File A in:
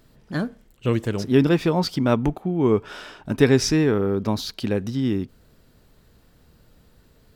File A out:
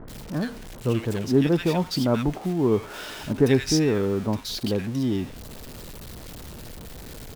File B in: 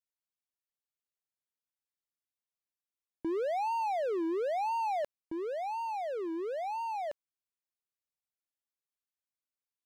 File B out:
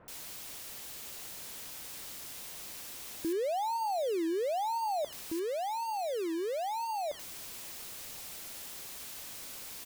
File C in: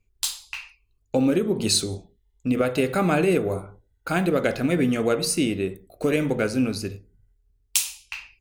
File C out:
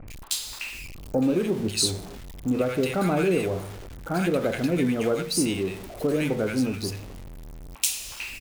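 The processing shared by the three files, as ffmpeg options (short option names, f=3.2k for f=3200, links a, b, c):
-filter_complex "[0:a]aeval=exprs='val(0)+0.5*0.0282*sgn(val(0))':c=same,acrossover=split=1400[a][b];[b]adelay=80[c];[a][c]amix=inputs=2:normalize=0,volume=-3dB"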